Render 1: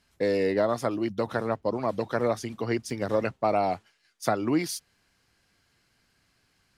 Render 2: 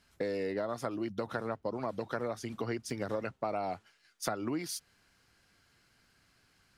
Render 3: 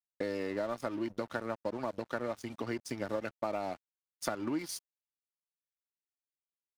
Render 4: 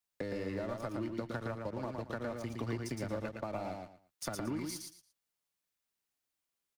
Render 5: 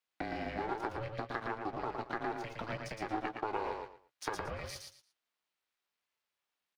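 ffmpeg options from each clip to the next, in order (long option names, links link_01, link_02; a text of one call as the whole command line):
ffmpeg -i in.wav -af "acompressor=threshold=-33dB:ratio=4,equalizer=frequency=1400:width_type=o:width=0.28:gain=4" out.wav
ffmpeg -i in.wav -af "aecho=1:1:3.4:0.32,aeval=exprs='sgn(val(0))*max(abs(val(0))-0.00398,0)':channel_layout=same" out.wav
ffmpeg -i in.wav -filter_complex "[0:a]acrossover=split=150[link_01][link_02];[link_02]acompressor=threshold=-55dB:ratio=2[link_03];[link_01][link_03]amix=inputs=2:normalize=0,asplit=2[link_04][link_05];[link_05]aecho=0:1:114|228|342:0.631|0.145|0.0334[link_06];[link_04][link_06]amix=inputs=2:normalize=0,volume=7dB" out.wav
ffmpeg -i in.wav -filter_complex "[0:a]acrossover=split=420 4500:gain=0.141 1 0.2[link_01][link_02][link_03];[link_01][link_02][link_03]amix=inputs=3:normalize=0,aeval=exprs='val(0)*sin(2*PI*220*n/s)':channel_layout=same,asplit=2[link_04][link_05];[link_05]adelay=16,volume=-12dB[link_06];[link_04][link_06]amix=inputs=2:normalize=0,volume=7.5dB" out.wav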